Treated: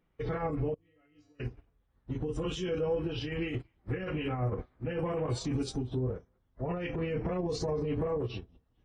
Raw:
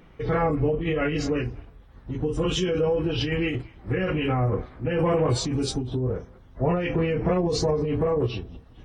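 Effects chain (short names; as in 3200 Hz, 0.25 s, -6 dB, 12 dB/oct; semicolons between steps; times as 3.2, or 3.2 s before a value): limiter -22.5 dBFS, peak gain reduction 10 dB; 0.74–1.4 resonator 100 Hz, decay 0.56 s, harmonics odd, mix 90%; upward expander 2.5:1, over -42 dBFS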